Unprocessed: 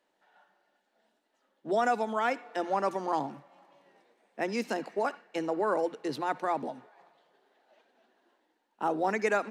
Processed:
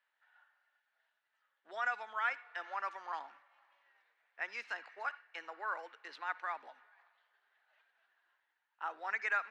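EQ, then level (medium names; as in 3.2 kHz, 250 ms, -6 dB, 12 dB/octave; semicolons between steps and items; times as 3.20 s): ladder band-pass 1.9 kHz, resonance 35%; +7.5 dB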